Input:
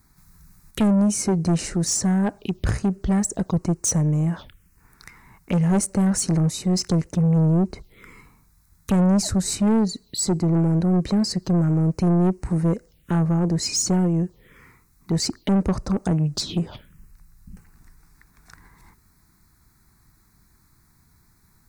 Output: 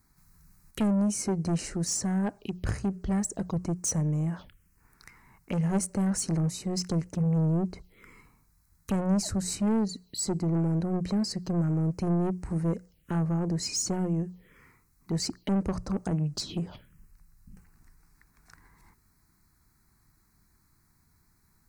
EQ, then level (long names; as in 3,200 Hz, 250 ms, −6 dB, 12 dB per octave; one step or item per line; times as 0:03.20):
mains-hum notches 60/120/180 Hz
notch filter 3,600 Hz, Q 10
−7.0 dB